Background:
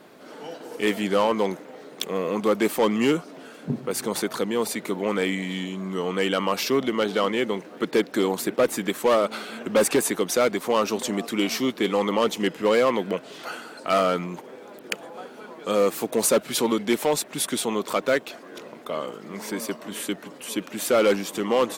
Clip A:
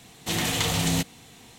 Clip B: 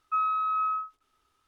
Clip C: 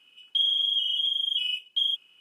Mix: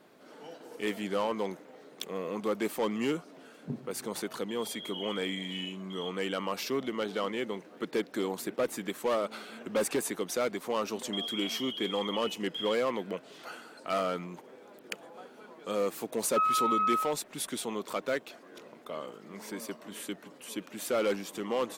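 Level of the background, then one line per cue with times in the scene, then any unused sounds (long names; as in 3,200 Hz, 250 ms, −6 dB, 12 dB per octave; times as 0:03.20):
background −9.5 dB
0:04.14: mix in C −14.5 dB + compressor whose output falls as the input rises −28 dBFS, ratio −0.5
0:10.78: mix in C −13 dB
0:16.24: mix in B −0.5 dB
not used: A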